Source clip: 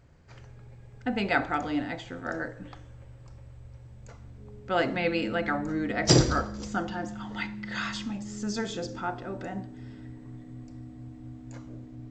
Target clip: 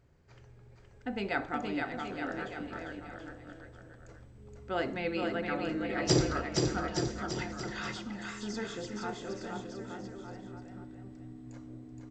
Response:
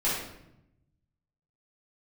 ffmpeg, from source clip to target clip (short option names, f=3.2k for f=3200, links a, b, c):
-af "equalizer=f=390:w=4.6:g=6,aecho=1:1:470|869.5|1209|1498|1743:0.631|0.398|0.251|0.158|0.1,volume=-7.5dB"